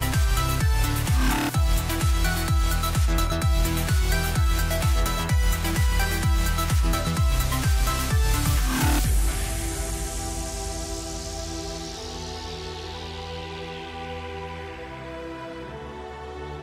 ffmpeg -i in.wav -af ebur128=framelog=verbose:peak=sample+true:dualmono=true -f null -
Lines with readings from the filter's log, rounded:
Integrated loudness:
  I:         -22.3 LUFS
  Threshold: -32.7 LUFS
Loudness range:
  LRA:        10.9 LU
  Threshold: -42.6 LUFS
  LRA low:   -31.5 LUFS
  LRA high:  -20.6 LUFS
Sample peak:
  Peak:      -12.8 dBFS
True peak:
  Peak:      -12.3 dBFS